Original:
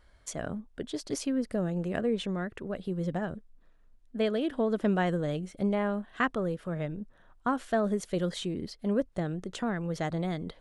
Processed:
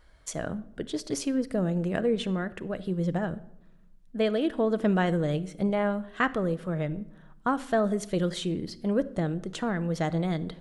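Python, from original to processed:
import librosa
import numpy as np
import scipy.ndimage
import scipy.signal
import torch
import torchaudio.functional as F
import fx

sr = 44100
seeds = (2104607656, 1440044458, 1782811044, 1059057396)

y = fx.room_shoebox(x, sr, seeds[0], volume_m3=2400.0, walls='furnished', distance_m=0.61)
y = y * librosa.db_to_amplitude(2.5)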